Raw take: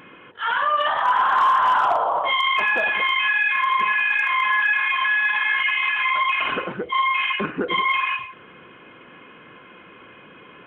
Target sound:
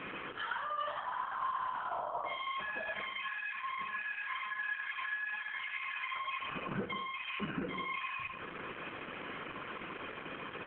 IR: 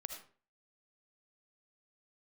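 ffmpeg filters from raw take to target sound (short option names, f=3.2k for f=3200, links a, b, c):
-filter_complex "[0:a]aresample=8000,aresample=44100,asplit=2[a][b];[b]acompressor=threshold=-27dB:ratio=16,volume=1dB[c];[a][c]amix=inputs=2:normalize=0,alimiter=limit=-17dB:level=0:latency=1:release=55,acrossover=split=230[d][e];[e]acompressor=threshold=-36dB:ratio=4[f];[d][f]amix=inputs=2:normalize=0,acrossover=split=2000[g][h];[g]crystalizer=i=5.5:c=0[i];[i][h]amix=inputs=2:normalize=0,bandreject=f=60:t=h:w=6,bandreject=f=120:t=h:w=6,bandreject=f=180:t=h:w=6,bandreject=f=240:t=h:w=6,bandreject=f=300:t=h:w=6,bandreject=f=360:t=h:w=6[j];[1:a]atrim=start_sample=2205[k];[j][k]afir=irnorm=-1:irlink=0" -ar 48000 -c:a libopus -b:a 8k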